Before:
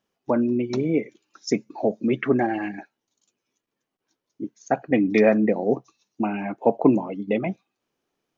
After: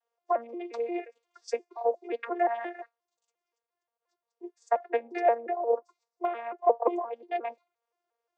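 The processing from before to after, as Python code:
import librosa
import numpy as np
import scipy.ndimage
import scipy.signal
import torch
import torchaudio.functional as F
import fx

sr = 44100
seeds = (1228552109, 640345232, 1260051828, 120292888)

y = fx.vocoder_arp(x, sr, chord='bare fifth', root=58, every_ms=176)
y = scipy.signal.sosfilt(scipy.signal.butter(6, 490.0, 'highpass', fs=sr, output='sos'), y)
y = fx.peak_eq(y, sr, hz=3000.0, db=fx.steps((0.0, -4.5), (5.01, -12.5), (6.25, -4.5)), octaves=1.2)
y = y * 10.0 ** (4.0 / 20.0)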